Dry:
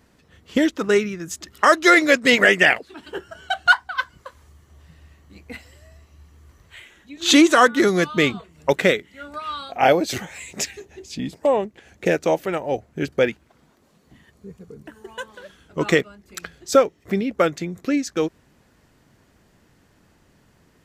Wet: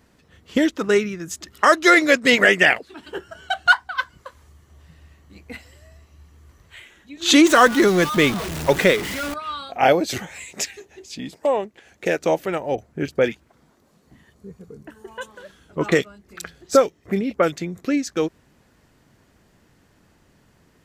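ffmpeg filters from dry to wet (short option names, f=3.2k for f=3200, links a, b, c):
-filter_complex "[0:a]asettb=1/sr,asplit=3[a][b][c];[a]atrim=end=7.454[d];[b]atrim=start=7.45:end=9.34,asetpts=PTS-STARTPTS,afade=t=in:d=0.004:c=qsin,afade=t=out:st=1.886:d=0.004:c=qsin,aeval=exprs='val(0)+0.5*0.0708*sgn(val(0))':c=same[e];[c]atrim=start=9.336[f];[d][e]acrossfade=d=0.004:c1=hsin:c2=qsin[g];[g][f]acrossfade=d=0.004:c1=qsin:c2=hsin,asettb=1/sr,asplit=3[h][i][j];[h]atrim=end=10.444[k];[i]atrim=start=10.44:end=12.21,asetpts=PTS-STARTPTS,afade=t=in:d=0.004:c=qsin,afade=t=out:st=1.766:d=0.004:c=qsin,lowshelf=f=250:g=-9[l];[j]atrim=start=12.206[m];[k][l]acrossfade=d=0.004:c1=hsin:c2=qsin[n];[n][m]acrossfade=d=0.004:c1=qsin:c2=hsin,asettb=1/sr,asplit=3[o][p][q];[o]atrim=end=12.754[r];[p]atrim=start=12.75:end=17.52,asetpts=PTS-STARTPTS,afade=t=in:d=0.004:c=qsin,afade=t=out:st=4.766:d=0.004:c=qsin,acrossover=split=2800[s][t];[t]adelay=30[u];[s][u]amix=inputs=2:normalize=0,atrim=end_sample=210357[v];[q]atrim=start=17.516[w];[r][v]acrossfade=d=0.004:c1=hsin:c2=qsin[x];[x][w]acrossfade=d=0.004:c1=qsin:c2=hsin"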